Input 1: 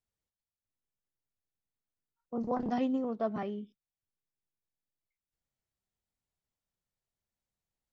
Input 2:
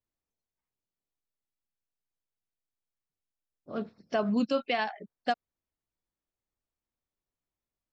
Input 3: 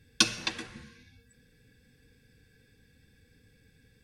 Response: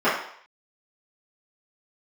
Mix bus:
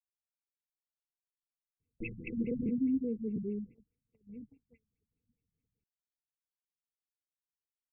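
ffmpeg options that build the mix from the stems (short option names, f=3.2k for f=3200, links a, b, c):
-filter_complex "[0:a]equalizer=f=80:w=0.33:g=6,volume=-1.5dB[a];[1:a]volume=-20dB[b];[2:a]aeval=exprs='(tanh(44.7*val(0)+0.3)-tanh(0.3))/44.7':c=same,adelay=1800,volume=2.5dB[c];[a][b][c]amix=inputs=3:normalize=0,afftfilt=real='re*(1-between(b*sr/4096,500,2000))':imag='im*(1-between(b*sr/4096,500,2000))':win_size=4096:overlap=0.75,agate=range=-26dB:threshold=-49dB:ratio=16:detection=peak,afftfilt=real='re*lt(b*sr/1024,220*pow(2900/220,0.5+0.5*sin(2*PI*4.8*pts/sr)))':imag='im*lt(b*sr/1024,220*pow(2900/220,0.5+0.5*sin(2*PI*4.8*pts/sr)))':win_size=1024:overlap=0.75"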